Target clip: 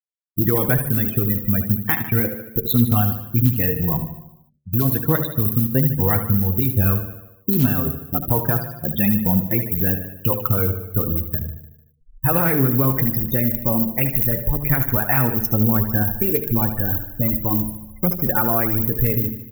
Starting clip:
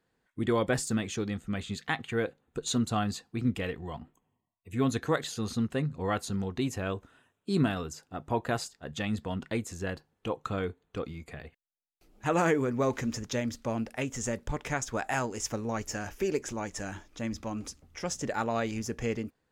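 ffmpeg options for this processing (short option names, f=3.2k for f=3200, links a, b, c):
-filter_complex "[0:a]bass=f=250:g=12,treble=f=4k:g=-8,asplit=2[a][b];[b]acrusher=bits=4:mix=0:aa=0.000001,volume=-8dB[c];[a][c]amix=inputs=2:normalize=0,aexciter=amount=11.6:drive=10:freq=11k,afftfilt=real='re*gte(hypot(re,im),0.0398)':imag='im*gte(hypot(re,im),0.0398)':win_size=1024:overlap=0.75,asoftclip=type=hard:threshold=-6.5dB,areverse,acompressor=mode=upward:threshold=-31dB:ratio=2.5,areverse,bandreject=f=72.91:t=h:w=4,bandreject=f=145.82:t=h:w=4,bandreject=f=218.73:t=h:w=4,bandreject=f=291.64:t=h:w=4,bandreject=f=364.55:t=h:w=4,bandreject=f=437.46:t=h:w=4,bandreject=f=510.37:t=h:w=4,bandreject=f=583.28:t=h:w=4,bandreject=f=656.19:t=h:w=4,acompressor=threshold=-20dB:ratio=16,equalizer=f=3.6k:w=0.36:g=5.5,aecho=1:1:75|150|225|300|375|450|525:0.299|0.17|0.097|0.0553|0.0315|0.018|0.0102,flanger=delay=5.1:depth=4.7:regen=38:speed=0.22:shape=triangular,alimiter=level_in=14.5dB:limit=-1dB:release=50:level=0:latency=1,volume=-4dB"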